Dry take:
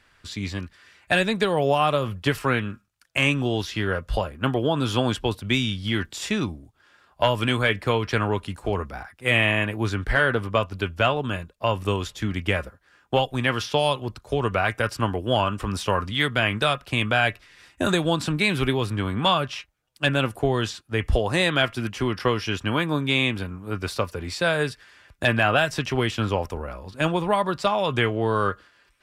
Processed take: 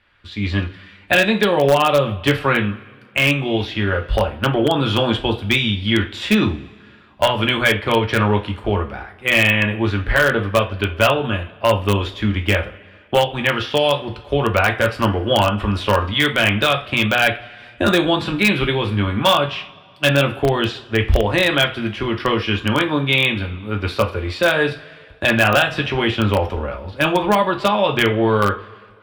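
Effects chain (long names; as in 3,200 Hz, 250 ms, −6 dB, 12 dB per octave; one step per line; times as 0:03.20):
high shelf with overshoot 4,700 Hz −12.5 dB, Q 1.5
automatic gain control gain up to 13 dB
coupled-rooms reverb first 0.3 s, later 1.9 s, from −21 dB, DRR 3 dB
in parallel at −10.5 dB: wrap-around overflow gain 2.5 dB
on the sum: level −5 dB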